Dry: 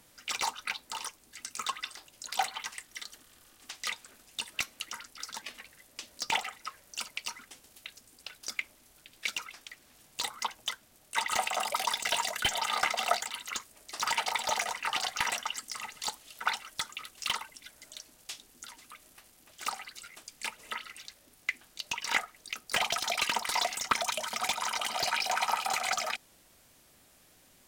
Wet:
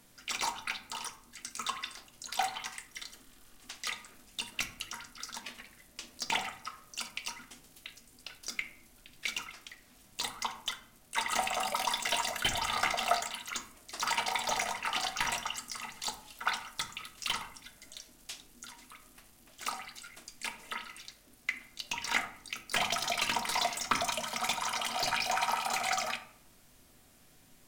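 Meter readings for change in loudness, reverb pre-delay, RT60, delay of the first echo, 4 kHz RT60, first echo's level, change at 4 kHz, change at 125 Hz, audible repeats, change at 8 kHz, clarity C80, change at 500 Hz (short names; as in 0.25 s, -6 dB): -1.0 dB, 3 ms, 0.65 s, none, 0.35 s, none, -1.5 dB, +3.5 dB, none, -1.5 dB, 15.5 dB, 0.0 dB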